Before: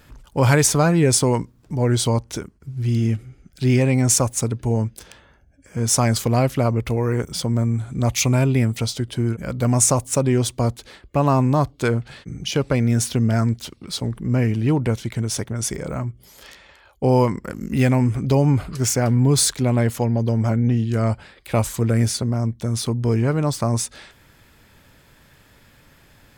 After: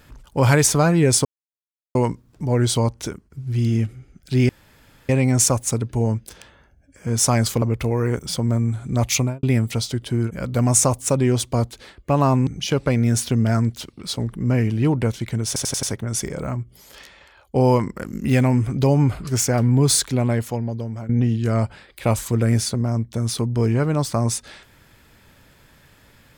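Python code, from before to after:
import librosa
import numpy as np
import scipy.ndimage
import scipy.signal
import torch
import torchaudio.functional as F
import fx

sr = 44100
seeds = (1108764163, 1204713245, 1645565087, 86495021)

y = fx.studio_fade_out(x, sr, start_s=8.21, length_s=0.28)
y = fx.edit(y, sr, fx.insert_silence(at_s=1.25, length_s=0.7),
    fx.insert_room_tone(at_s=3.79, length_s=0.6),
    fx.cut(start_s=6.32, length_s=0.36),
    fx.cut(start_s=11.53, length_s=0.78),
    fx.stutter(start_s=15.31, slice_s=0.09, count=5),
    fx.fade_out_to(start_s=19.54, length_s=1.03, floor_db=-14.5), tone=tone)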